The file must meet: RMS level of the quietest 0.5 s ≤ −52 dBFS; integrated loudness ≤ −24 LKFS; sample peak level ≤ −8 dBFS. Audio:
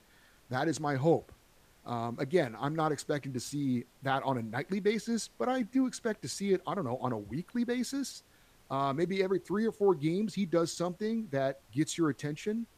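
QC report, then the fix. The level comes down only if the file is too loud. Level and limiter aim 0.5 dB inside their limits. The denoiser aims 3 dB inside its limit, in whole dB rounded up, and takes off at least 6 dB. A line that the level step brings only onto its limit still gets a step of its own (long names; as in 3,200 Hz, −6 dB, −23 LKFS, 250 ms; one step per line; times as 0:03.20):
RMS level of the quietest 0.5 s −63 dBFS: in spec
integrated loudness −32.5 LKFS: in spec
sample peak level −14.5 dBFS: in spec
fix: no processing needed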